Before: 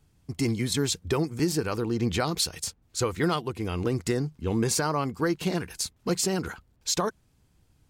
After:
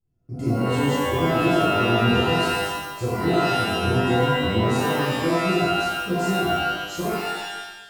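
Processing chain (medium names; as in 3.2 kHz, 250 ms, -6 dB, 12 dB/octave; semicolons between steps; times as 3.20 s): gate -52 dBFS, range -13 dB; tilt shelf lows +8.5 dB, about 690 Hz; feedback comb 440 Hz, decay 0.53 s, mix 70%; pitch-shifted reverb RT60 1 s, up +12 st, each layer -2 dB, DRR -9.5 dB; trim -3 dB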